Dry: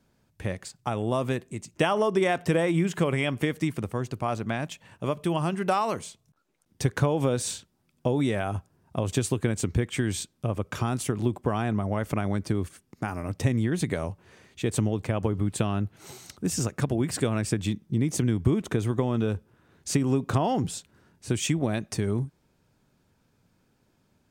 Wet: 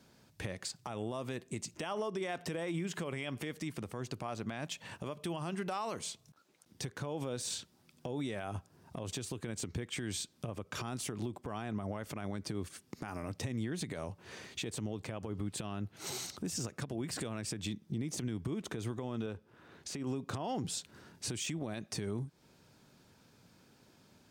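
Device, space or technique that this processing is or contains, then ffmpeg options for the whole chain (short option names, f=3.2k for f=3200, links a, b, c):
broadcast voice chain: -filter_complex "[0:a]highpass=f=120:p=1,deesser=0.6,acompressor=threshold=-40dB:ratio=4,equalizer=f=4.6k:t=o:w=1.2:g=5,alimiter=level_in=9dB:limit=-24dB:level=0:latency=1:release=63,volume=-9dB,asettb=1/sr,asplit=3[a][b][c];[a]atrim=end=19.264[d];[b]atrim=start=19.26:end=20.07,asetpts=PTS-STARTPTS,afade=t=in:d=0.004:c=qsin,afade=t=out:st=0.806:d=0.004:c=qsin,bass=f=250:g=-4,treble=f=4k:g=-7[e];[c]atrim=start=20.066[f];[d][e]acrossfade=d=0.004:c1=hsin:c2=qsin[g];[g][f]acrossfade=d=0.004:c1=qsin:c2=hsin,volume=5dB"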